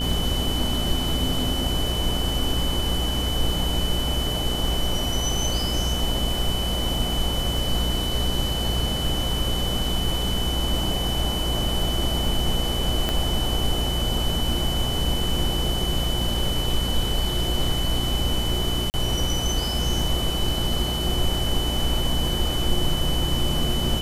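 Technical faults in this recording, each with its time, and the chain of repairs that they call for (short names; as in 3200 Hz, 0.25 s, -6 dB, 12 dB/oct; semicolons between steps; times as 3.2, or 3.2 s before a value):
buzz 60 Hz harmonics 25 -28 dBFS
crackle 21/s -31 dBFS
tone 3000 Hz -28 dBFS
13.09 pop -9 dBFS
18.9–18.94 gap 39 ms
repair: de-click; de-hum 60 Hz, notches 25; notch 3000 Hz, Q 30; interpolate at 18.9, 39 ms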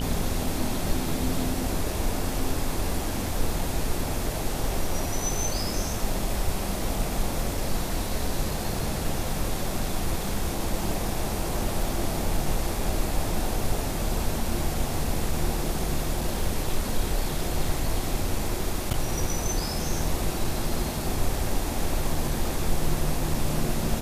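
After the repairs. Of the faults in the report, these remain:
13.09 pop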